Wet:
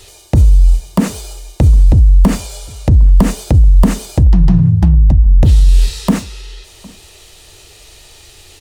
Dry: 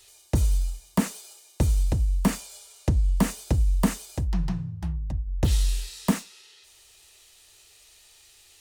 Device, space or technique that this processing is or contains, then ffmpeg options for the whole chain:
mastering chain: -filter_complex "[0:a]equalizer=f=3.7k:t=o:w=1.9:g=3.5,acompressor=threshold=-24dB:ratio=2.5,tiltshelf=f=880:g=8,alimiter=level_in=19dB:limit=-1dB:release=50:level=0:latency=1,asplit=2[a][b];[b]adelay=758,volume=-24dB,highshelf=f=4k:g=-17.1[c];[a][c]amix=inputs=2:normalize=0,volume=-1dB"

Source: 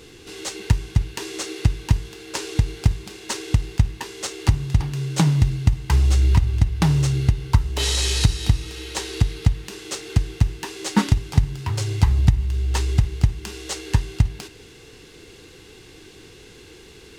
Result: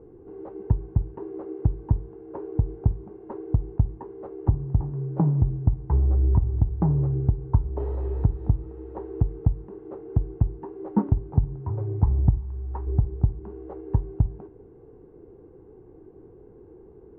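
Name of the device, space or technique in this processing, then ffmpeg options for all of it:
under water: -filter_complex "[0:a]asettb=1/sr,asplit=3[a][b][c];[a]atrim=end=12.384[d];[b]atrim=start=12.38:end=12.87,asetpts=PTS-STARTPTS,afade=t=in:d=0.004:c=qsin,afade=t=out:st=0.486:d=0.004:c=qsin,lowshelf=f=700:t=q:w=1.5:g=-6[e];[c]atrim=start=12.866[f];[d][e]acrossfade=d=0.004:c1=hsin:c2=qsin[g];[g][f]acrossfade=d=0.004:c1=qsin:c2=hsin,lowpass=f=900:w=0.5412,lowpass=f=900:w=1.3066,equalizer=f=380:t=o:w=0.58:g=4.5,volume=-4dB"

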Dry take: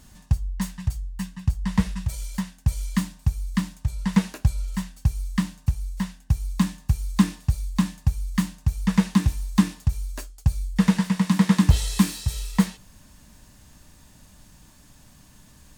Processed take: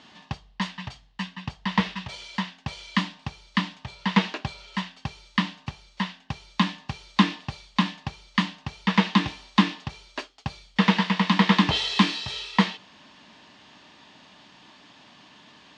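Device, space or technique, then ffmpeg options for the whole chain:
phone earpiece: -af "highpass=370,equalizer=f=530:t=q:w=4:g=-6,equalizer=f=1.5k:t=q:w=4:g=-4,equalizer=f=3.1k:t=q:w=4:g=4,lowpass=f=4.2k:w=0.5412,lowpass=f=4.2k:w=1.3066,volume=9dB"

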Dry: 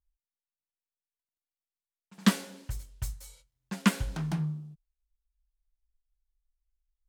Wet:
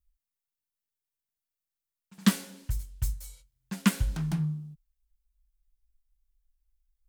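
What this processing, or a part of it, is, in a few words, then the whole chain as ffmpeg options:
smiley-face EQ: -af "lowshelf=f=140:g=8,equalizer=f=580:t=o:w=1.9:g=-4,highshelf=f=9.8k:g=8.5,volume=-1dB"

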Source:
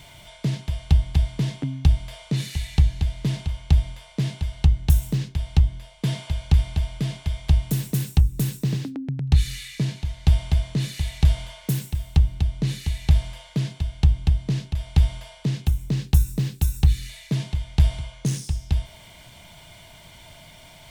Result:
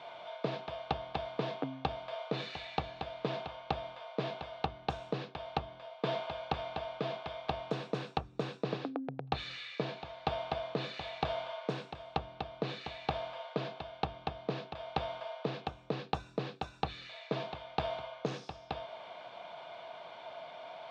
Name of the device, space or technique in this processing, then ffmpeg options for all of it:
phone earpiece: -af "highpass=460,equalizer=f=490:t=q:w=4:g=7,equalizer=f=720:t=q:w=4:g=8,equalizer=f=1.2k:t=q:w=4:g=6,equalizer=f=2k:t=q:w=4:g=-10,equalizer=f=3k:t=q:w=4:g=-7,lowpass=f=3.3k:w=0.5412,lowpass=f=3.3k:w=1.3066,volume=1.5dB"

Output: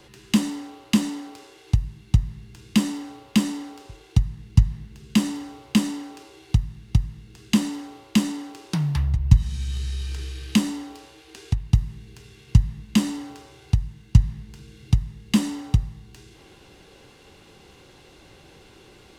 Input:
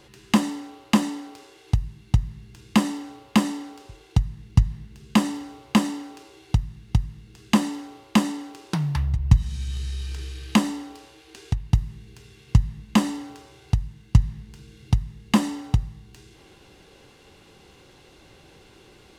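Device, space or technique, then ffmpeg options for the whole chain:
one-band saturation: -filter_complex "[0:a]acrossover=split=310|2200[a][b][c];[b]asoftclip=type=tanh:threshold=-35.5dB[d];[a][d][c]amix=inputs=3:normalize=0,volume=1.5dB"

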